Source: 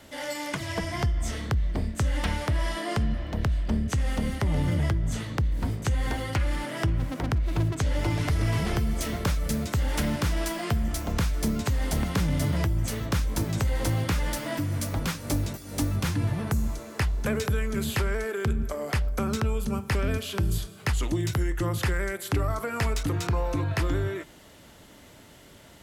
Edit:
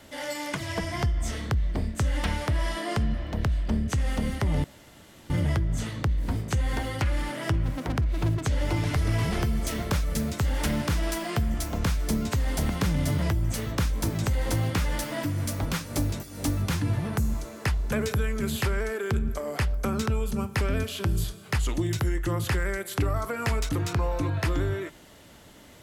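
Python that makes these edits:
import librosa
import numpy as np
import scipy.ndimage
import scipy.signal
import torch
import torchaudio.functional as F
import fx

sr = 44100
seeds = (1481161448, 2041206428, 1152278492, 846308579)

y = fx.edit(x, sr, fx.insert_room_tone(at_s=4.64, length_s=0.66), tone=tone)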